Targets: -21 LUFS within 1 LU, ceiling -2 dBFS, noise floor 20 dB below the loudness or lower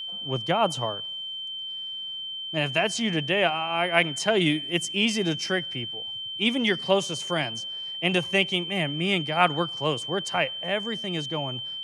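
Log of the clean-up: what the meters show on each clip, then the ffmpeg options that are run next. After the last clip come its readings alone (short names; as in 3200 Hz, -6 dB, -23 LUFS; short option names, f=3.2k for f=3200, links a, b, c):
steady tone 3100 Hz; tone level -32 dBFS; loudness -25.5 LUFS; peak -4.5 dBFS; loudness target -21.0 LUFS
-> -af "bandreject=f=3.1k:w=30"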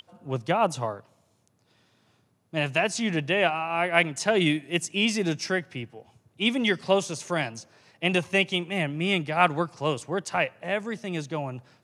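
steady tone none; loudness -26.0 LUFS; peak -5.0 dBFS; loudness target -21.0 LUFS
-> -af "volume=5dB,alimiter=limit=-2dB:level=0:latency=1"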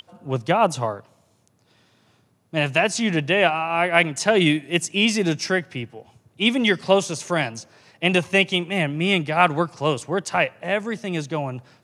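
loudness -21.5 LUFS; peak -2.0 dBFS; noise floor -62 dBFS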